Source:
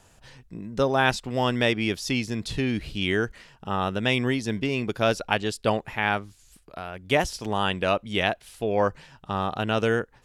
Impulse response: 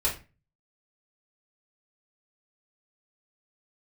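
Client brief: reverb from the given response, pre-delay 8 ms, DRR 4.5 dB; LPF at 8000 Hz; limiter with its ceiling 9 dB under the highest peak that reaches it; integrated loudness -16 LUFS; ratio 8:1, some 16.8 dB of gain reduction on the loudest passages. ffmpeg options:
-filter_complex "[0:a]lowpass=8k,acompressor=threshold=-35dB:ratio=8,alimiter=level_in=5.5dB:limit=-24dB:level=0:latency=1,volume=-5.5dB,asplit=2[a][b];[1:a]atrim=start_sample=2205,adelay=8[c];[b][c]afir=irnorm=-1:irlink=0,volume=-13dB[d];[a][d]amix=inputs=2:normalize=0,volume=24.5dB"

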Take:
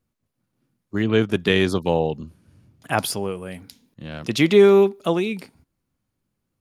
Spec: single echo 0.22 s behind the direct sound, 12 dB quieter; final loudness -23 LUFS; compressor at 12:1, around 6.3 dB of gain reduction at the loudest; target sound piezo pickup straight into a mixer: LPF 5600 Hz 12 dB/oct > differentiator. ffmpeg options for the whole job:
-af "acompressor=threshold=-15dB:ratio=12,lowpass=5.6k,aderivative,aecho=1:1:220:0.251,volume=16dB"

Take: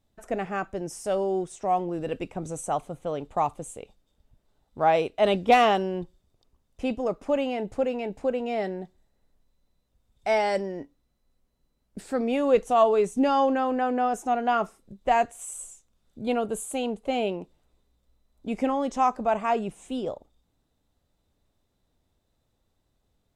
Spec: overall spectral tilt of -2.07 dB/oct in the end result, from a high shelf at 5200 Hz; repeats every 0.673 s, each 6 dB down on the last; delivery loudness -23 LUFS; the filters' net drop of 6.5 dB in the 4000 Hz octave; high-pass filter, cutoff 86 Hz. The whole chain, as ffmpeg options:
-af "highpass=86,equalizer=f=4k:t=o:g=-7,highshelf=f=5.2k:g=-8,aecho=1:1:673|1346|2019|2692|3365|4038:0.501|0.251|0.125|0.0626|0.0313|0.0157,volume=3.5dB"

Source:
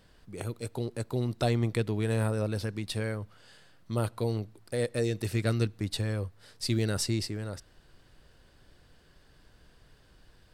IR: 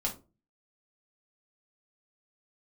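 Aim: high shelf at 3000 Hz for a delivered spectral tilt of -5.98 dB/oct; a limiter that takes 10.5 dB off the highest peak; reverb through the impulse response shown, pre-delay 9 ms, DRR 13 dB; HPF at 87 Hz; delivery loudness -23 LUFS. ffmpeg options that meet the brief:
-filter_complex "[0:a]highpass=87,highshelf=f=3k:g=-5,alimiter=level_in=0.5dB:limit=-24dB:level=0:latency=1,volume=-0.5dB,asplit=2[a][b];[1:a]atrim=start_sample=2205,adelay=9[c];[b][c]afir=irnorm=-1:irlink=0,volume=-17dB[d];[a][d]amix=inputs=2:normalize=0,volume=13.5dB"

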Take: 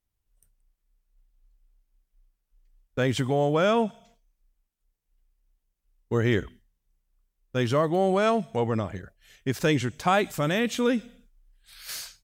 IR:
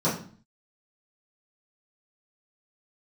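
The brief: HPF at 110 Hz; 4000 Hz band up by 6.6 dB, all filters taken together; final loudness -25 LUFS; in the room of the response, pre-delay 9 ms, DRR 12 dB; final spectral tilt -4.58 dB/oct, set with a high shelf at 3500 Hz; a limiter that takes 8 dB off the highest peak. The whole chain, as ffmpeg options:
-filter_complex "[0:a]highpass=110,highshelf=f=3.5k:g=7,equalizer=f=4k:t=o:g=4,alimiter=limit=-16.5dB:level=0:latency=1,asplit=2[a][b];[1:a]atrim=start_sample=2205,adelay=9[c];[b][c]afir=irnorm=-1:irlink=0,volume=-25dB[d];[a][d]amix=inputs=2:normalize=0,volume=2dB"

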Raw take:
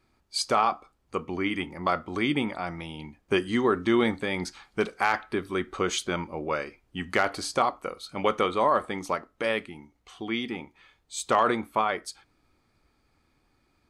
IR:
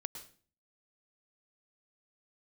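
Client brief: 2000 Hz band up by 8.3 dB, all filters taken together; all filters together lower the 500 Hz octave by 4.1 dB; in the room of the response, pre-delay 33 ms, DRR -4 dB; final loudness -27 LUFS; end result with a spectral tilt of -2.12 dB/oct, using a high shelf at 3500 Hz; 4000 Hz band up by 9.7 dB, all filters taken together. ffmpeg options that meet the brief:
-filter_complex "[0:a]equalizer=f=500:t=o:g=-6,equalizer=f=2k:t=o:g=7,highshelf=f=3.5k:g=7,equalizer=f=4k:t=o:g=5.5,asplit=2[a][b];[1:a]atrim=start_sample=2205,adelay=33[c];[b][c]afir=irnorm=-1:irlink=0,volume=6dB[d];[a][d]amix=inputs=2:normalize=0,volume=-8dB"

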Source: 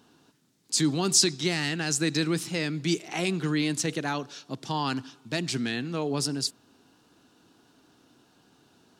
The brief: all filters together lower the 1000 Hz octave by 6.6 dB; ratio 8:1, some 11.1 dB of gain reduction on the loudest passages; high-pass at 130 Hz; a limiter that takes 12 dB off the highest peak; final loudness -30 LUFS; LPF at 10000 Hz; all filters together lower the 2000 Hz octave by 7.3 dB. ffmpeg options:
-af "highpass=130,lowpass=10k,equalizer=f=1k:t=o:g=-7,equalizer=f=2k:t=o:g=-7.5,acompressor=threshold=-29dB:ratio=8,volume=8.5dB,alimiter=limit=-21dB:level=0:latency=1"

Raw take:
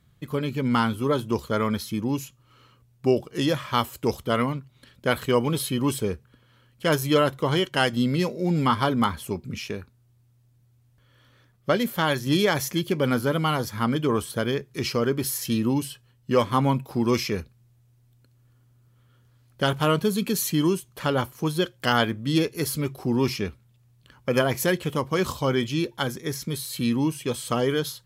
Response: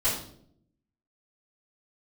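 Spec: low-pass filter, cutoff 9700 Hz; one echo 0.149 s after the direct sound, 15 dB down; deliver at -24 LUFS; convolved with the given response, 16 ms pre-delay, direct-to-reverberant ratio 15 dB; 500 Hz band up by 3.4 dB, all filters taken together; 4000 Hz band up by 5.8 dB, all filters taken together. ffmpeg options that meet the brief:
-filter_complex "[0:a]lowpass=9.7k,equalizer=f=500:t=o:g=4,equalizer=f=4k:t=o:g=8,aecho=1:1:149:0.178,asplit=2[a][b];[1:a]atrim=start_sample=2205,adelay=16[c];[b][c]afir=irnorm=-1:irlink=0,volume=-25.5dB[d];[a][d]amix=inputs=2:normalize=0,volume=-1.5dB"

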